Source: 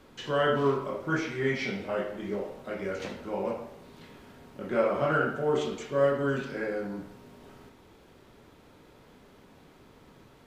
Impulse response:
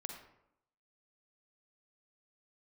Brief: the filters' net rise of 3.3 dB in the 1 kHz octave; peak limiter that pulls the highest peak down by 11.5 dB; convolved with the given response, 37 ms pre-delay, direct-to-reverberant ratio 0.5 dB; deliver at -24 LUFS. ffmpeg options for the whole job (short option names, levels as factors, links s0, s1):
-filter_complex "[0:a]equalizer=f=1000:t=o:g=4.5,alimiter=limit=0.075:level=0:latency=1,asplit=2[s0][s1];[1:a]atrim=start_sample=2205,adelay=37[s2];[s1][s2]afir=irnorm=-1:irlink=0,volume=1.26[s3];[s0][s3]amix=inputs=2:normalize=0,volume=2"